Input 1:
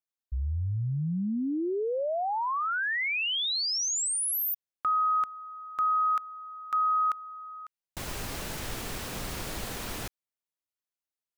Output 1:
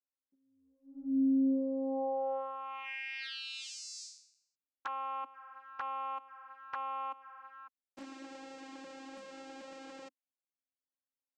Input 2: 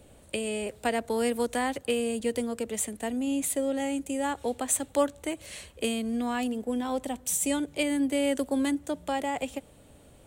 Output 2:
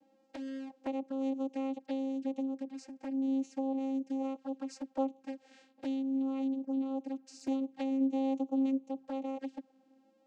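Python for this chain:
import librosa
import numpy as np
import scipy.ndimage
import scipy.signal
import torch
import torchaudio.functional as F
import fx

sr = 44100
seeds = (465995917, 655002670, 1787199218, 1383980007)

y = fx.vocoder(x, sr, bands=8, carrier='saw', carrier_hz=268.0)
y = fx.env_flanger(y, sr, rest_ms=11.1, full_db=-28.5)
y = y * 10.0 ** (-4.0 / 20.0)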